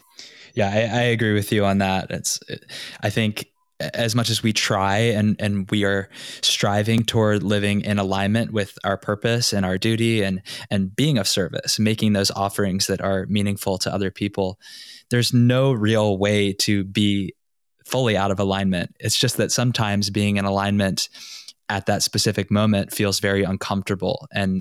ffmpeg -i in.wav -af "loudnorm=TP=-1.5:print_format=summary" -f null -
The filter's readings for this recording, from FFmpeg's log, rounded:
Input Integrated:    -21.0 LUFS
Input True Peak:      -7.4 dBTP
Input LRA:             2.5 LU
Input Threshold:     -31.3 LUFS